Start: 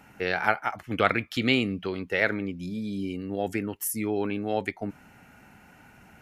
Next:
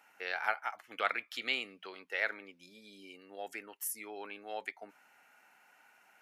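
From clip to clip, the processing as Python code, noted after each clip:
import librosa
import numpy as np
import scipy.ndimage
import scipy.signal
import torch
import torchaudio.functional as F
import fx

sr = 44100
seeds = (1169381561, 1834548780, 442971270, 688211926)

y = scipy.signal.sosfilt(scipy.signal.butter(2, 720.0, 'highpass', fs=sr, output='sos'), x)
y = y * librosa.db_to_amplitude(-7.5)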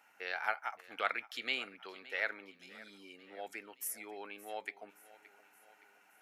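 y = fx.echo_feedback(x, sr, ms=570, feedback_pct=56, wet_db=-19)
y = y * librosa.db_to_amplitude(-2.0)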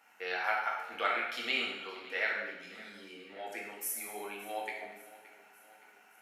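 y = fx.rev_plate(x, sr, seeds[0], rt60_s=0.98, hf_ratio=0.95, predelay_ms=0, drr_db=-3.0)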